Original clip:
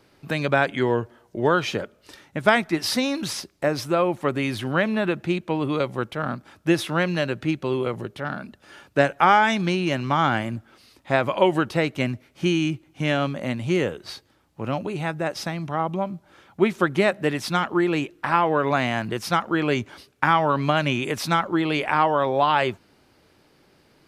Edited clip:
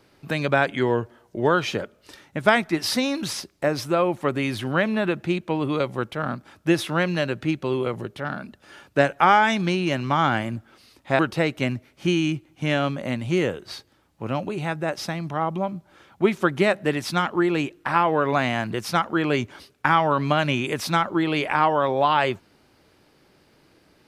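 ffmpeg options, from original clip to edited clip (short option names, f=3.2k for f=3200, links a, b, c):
-filter_complex "[0:a]asplit=2[a][b];[a]atrim=end=11.192[c];[b]atrim=start=11.568[d];[c][d]acrossfade=d=0.004:c1=hsin:c2=hsin"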